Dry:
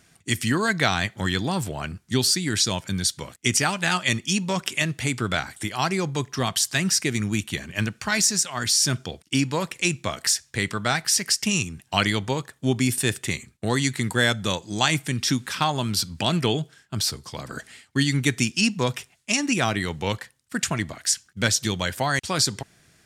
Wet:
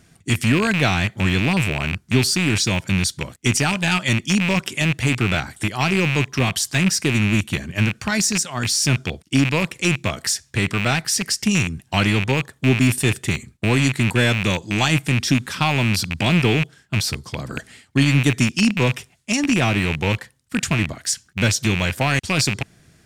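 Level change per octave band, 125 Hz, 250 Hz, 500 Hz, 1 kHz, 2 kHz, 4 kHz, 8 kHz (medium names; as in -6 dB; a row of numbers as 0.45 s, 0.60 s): +7.5 dB, +6.0 dB, +3.5 dB, +1.5 dB, +4.5 dB, +1.0 dB, 0.0 dB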